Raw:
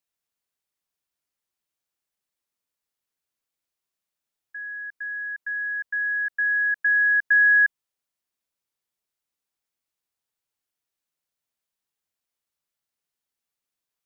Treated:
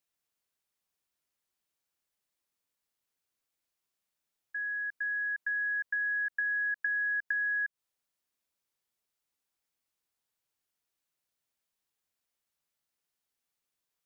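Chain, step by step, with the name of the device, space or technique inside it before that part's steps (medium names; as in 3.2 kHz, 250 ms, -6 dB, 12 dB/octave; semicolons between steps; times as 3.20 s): serial compression, leveller first (compression, threshold -21 dBFS, peak gain reduction 6 dB; compression, threshold -30 dBFS, peak gain reduction 9.5 dB)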